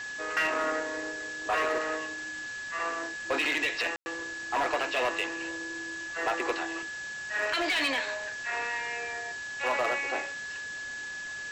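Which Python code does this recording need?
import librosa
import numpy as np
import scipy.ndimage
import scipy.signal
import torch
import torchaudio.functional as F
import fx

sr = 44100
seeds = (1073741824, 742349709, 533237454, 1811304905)

y = fx.fix_declip(x, sr, threshold_db=-22.0)
y = fx.notch(y, sr, hz=1700.0, q=30.0)
y = fx.fix_ambience(y, sr, seeds[0], print_start_s=10.95, print_end_s=11.45, start_s=3.96, end_s=4.06)
y = fx.noise_reduce(y, sr, print_start_s=10.95, print_end_s=11.45, reduce_db=30.0)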